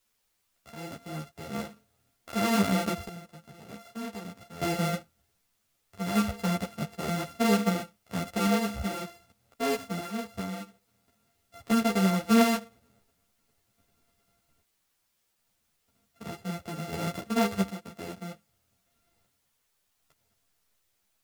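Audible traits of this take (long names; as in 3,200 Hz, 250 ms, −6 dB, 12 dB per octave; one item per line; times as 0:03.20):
a buzz of ramps at a fixed pitch in blocks of 64 samples
sample-and-hold tremolo 1.3 Hz, depth 85%
a quantiser's noise floor 12 bits, dither triangular
a shimmering, thickened sound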